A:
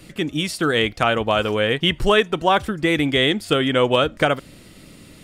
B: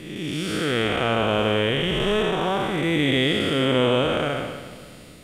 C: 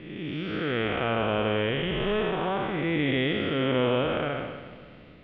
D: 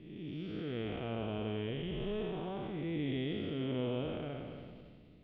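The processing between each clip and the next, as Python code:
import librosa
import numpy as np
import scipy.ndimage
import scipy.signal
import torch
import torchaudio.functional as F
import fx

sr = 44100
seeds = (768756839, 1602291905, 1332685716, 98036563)

y1 = fx.spec_blur(x, sr, span_ms=326.0)
y1 = fx.echo_feedback(y1, sr, ms=280, feedback_pct=38, wet_db=-14.0)
y1 = y1 * librosa.db_to_amplitude(1.5)
y2 = scipy.signal.sosfilt(scipy.signal.cheby2(4, 70, 11000.0, 'lowpass', fs=sr, output='sos'), y1)
y2 = y2 * librosa.db_to_amplitude(-4.5)
y3 = fx.peak_eq(y2, sr, hz=1500.0, db=-14.0, octaves=2.0)
y3 = fx.notch(y3, sr, hz=530.0, q=12.0)
y3 = fx.sustainer(y3, sr, db_per_s=24.0)
y3 = y3 * librosa.db_to_amplitude(-8.0)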